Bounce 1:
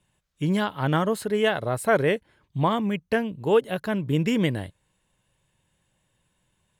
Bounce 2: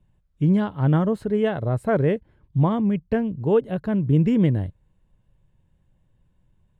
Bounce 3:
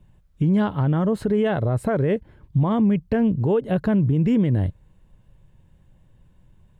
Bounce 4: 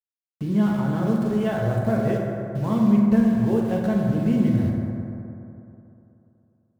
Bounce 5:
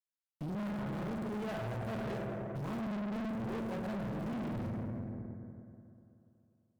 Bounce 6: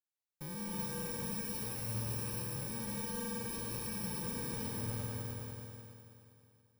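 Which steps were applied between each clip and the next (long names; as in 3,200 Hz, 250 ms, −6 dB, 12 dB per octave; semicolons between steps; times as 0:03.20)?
spectral tilt −4 dB per octave; level −4 dB
downward compressor, threshold −21 dBFS, peak gain reduction 8 dB; brickwall limiter −21 dBFS, peak gain reduction 7.5 dB; level +8.5 dB
centre clipping without the shift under −33 dBFS; convolution reverb RT60 3.0 s, pre-delay 5 ms, DRR −2.5 dB; level −7 dB
tube saturation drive 31 dB, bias 0.6; level −5 dB
samples in bit-reversed order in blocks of 64 samples; reverb whose tail is shaped and stops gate 350 ms rising, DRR −1.5 dB; level −5.5 dB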